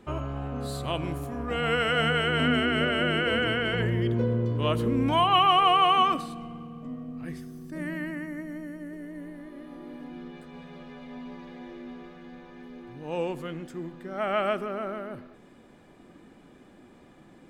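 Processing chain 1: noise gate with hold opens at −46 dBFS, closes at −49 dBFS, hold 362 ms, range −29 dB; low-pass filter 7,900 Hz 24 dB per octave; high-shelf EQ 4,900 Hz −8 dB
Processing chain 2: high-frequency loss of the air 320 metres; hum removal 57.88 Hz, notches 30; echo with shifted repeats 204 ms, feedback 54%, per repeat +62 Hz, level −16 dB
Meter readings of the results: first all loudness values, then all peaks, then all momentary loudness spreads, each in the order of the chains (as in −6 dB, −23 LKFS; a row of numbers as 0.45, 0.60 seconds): −27.0, −29.0 LKFS; −11.5, −12.5 dBFS; 22, 21 LU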